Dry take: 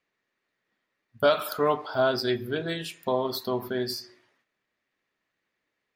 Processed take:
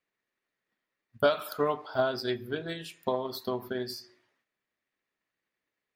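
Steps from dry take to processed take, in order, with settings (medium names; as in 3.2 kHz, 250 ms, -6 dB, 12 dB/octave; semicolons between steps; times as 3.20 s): transient shaper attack +6 dB, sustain 0 dB; trim -6.5 dB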